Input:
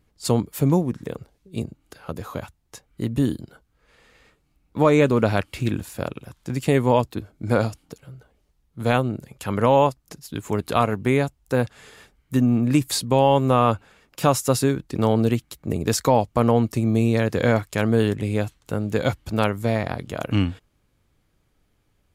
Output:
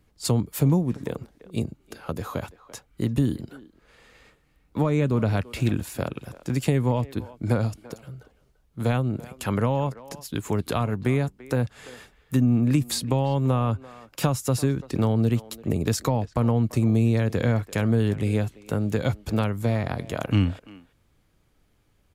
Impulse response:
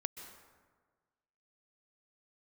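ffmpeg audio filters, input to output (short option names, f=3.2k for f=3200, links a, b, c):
-filter_complex "[0:a]acrossover=split=200[a][b];[b]acompressor=threshold=-26dB:ratio=6[c];[a][c]amix=inputs=2:normalize=0,asplit=2[d][e];[e]adelay=340,highpass=300,lowpass=3.4k,asoftclip=type=hard:threshold=-20dB,volume=-17dB[f];[d][f]amix=inputs=2:normalize=0,volume=1.5dB"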